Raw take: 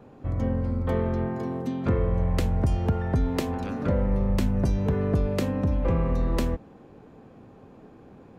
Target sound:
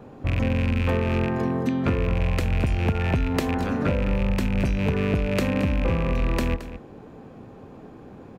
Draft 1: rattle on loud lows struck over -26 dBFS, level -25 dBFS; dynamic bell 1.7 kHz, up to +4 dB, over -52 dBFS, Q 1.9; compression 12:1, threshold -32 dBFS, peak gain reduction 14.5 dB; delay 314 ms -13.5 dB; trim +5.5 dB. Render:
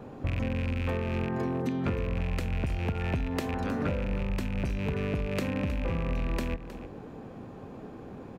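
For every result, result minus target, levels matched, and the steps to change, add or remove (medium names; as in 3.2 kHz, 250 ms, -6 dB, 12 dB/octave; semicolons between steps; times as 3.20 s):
echo 93 ms late; compression: peak gain reduction +7.5 dB
change: delay 221 ms -13.5 dB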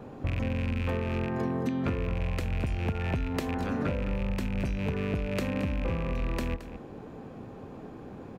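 compression: peak gain reduction +7.5 dB
change: compression 12:1, threshold -24 dBFS, peak gain reduction 7.5 dB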